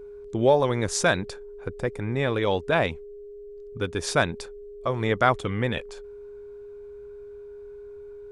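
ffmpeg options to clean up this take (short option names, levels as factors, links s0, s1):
-af "bandreject=f=410:w=30"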